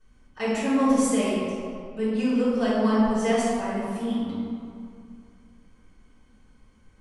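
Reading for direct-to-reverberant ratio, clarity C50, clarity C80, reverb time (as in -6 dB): -14.0 dB, -3.0 dB, -0.5 dB, 2.4 s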